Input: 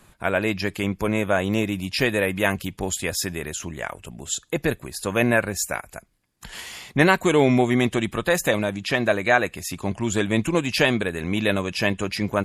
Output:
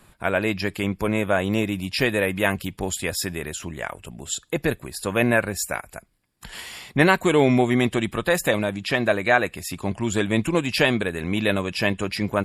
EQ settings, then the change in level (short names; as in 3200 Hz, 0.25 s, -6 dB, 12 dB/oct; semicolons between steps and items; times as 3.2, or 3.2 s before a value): notch 6300 Hz, Q 6.2; 0.0 dB